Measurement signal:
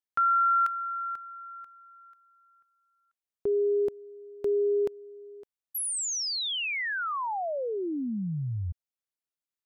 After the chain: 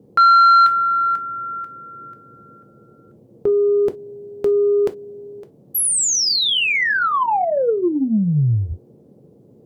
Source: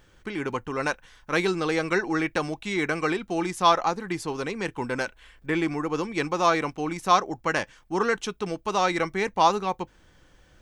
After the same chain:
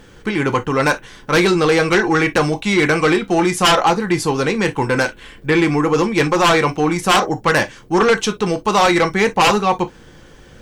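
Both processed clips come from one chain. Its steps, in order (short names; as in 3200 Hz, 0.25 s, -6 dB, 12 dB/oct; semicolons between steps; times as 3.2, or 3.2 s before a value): band noise 92–480 Hz -63 dBFS; non-linear reverb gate 80 ms falling, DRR 8 dB; sine folder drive 15 dB, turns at -2 dBFS; gain -6.5 dB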